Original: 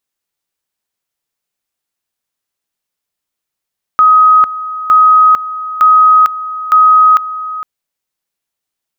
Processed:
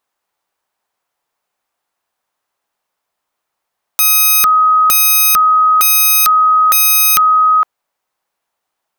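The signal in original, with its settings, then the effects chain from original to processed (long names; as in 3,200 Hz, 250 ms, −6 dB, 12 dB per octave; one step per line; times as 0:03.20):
tone at two levels in turn 1,260 Hz −3 dBFS, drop 15 dB, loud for 0.45 s, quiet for 0.46 s, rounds 4
parametric band 880 Hz +14.5 dB 2.2 octaves
wrap-around overflow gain 4 dB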